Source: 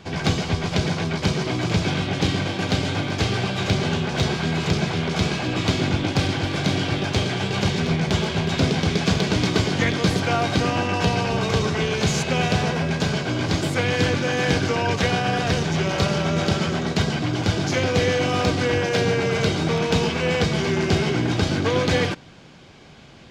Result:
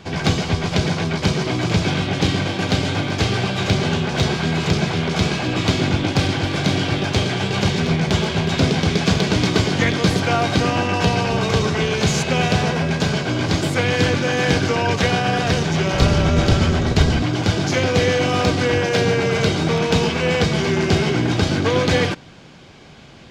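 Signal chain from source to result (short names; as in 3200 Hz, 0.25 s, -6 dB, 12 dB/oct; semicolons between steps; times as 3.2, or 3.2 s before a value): 15.93–17.23 octaver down 1 oct, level +3 dB; gain +3 dB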